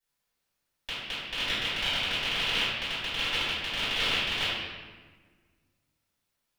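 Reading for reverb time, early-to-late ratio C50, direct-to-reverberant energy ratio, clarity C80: 1.4 s, −2.5 dB, −15.5 dB, 0.5 dB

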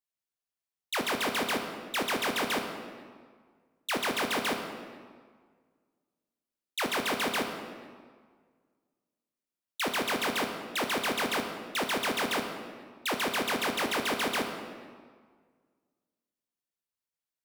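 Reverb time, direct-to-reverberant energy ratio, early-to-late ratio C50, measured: 1.8 s, 4.5 dB, 6.0 dB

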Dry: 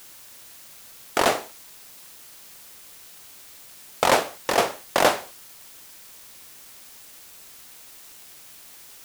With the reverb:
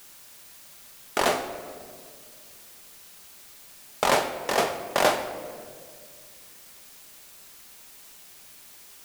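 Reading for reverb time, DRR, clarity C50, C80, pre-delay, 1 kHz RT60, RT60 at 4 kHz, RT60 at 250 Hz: 2.1 s, 5.5 dB, 10.0 dB, 11.0 dB, 5 ms, 1.7 s, 1.1 s, 2.6 s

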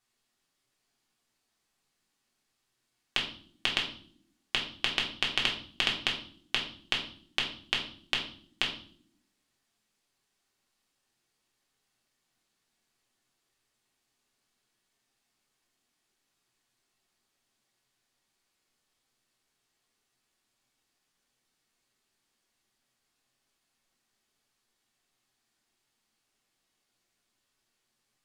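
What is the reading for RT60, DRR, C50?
non-exponential decay, −2.0 dB, 8.0 dB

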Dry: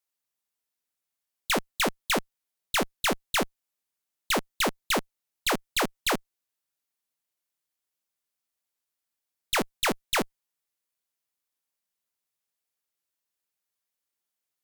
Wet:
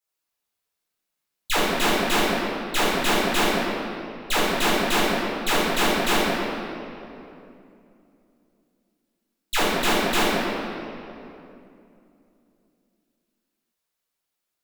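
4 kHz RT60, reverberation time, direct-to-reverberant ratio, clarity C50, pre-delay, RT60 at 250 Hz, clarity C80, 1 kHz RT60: 1.8 s, 2.8 s, −11.0 dB, −3.5 dB, 5 ms, 3.5 s, −1.0 dB, 2.6 s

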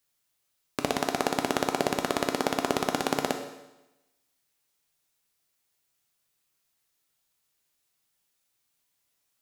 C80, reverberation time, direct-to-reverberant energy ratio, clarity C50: 10.0 dB, 1.0 s, 4.5 dB, 7.5 dB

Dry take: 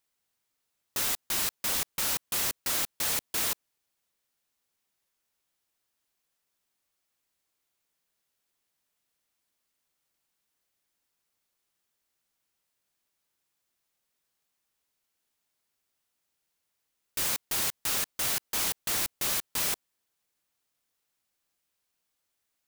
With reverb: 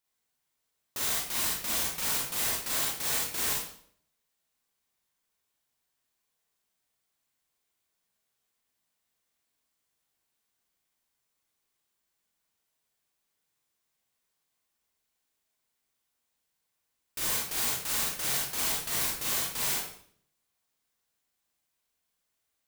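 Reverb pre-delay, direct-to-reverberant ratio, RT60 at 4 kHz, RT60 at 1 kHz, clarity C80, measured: 32 ms, −4.0 dB, 0.55 s, 0.55 s, 6.0 dB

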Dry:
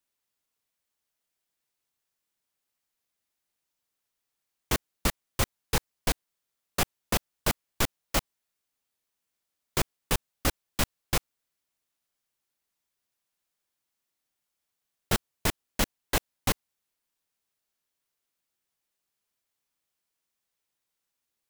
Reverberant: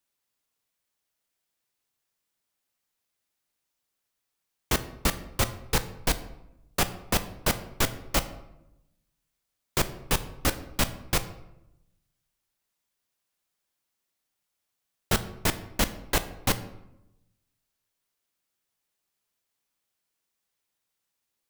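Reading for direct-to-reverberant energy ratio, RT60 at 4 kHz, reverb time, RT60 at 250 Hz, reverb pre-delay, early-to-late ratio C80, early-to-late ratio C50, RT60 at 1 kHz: 10.5 dB, 0.55 s, 0.90 s, 1.1 s, 13 ms, 16.0 dB, 14.0 dB, 0.80 s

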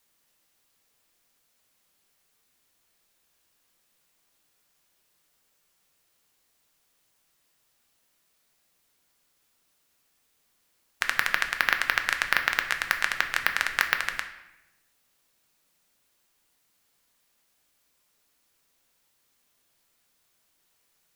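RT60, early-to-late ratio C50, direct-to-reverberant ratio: 0.95 s, 10.0 dB, 5.5 dB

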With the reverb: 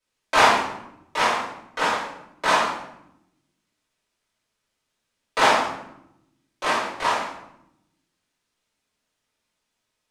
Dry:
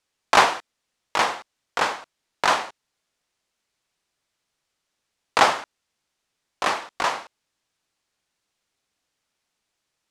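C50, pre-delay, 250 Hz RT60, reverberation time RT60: 2.0 dB, 3 ms, 1.3 s, 0.80 s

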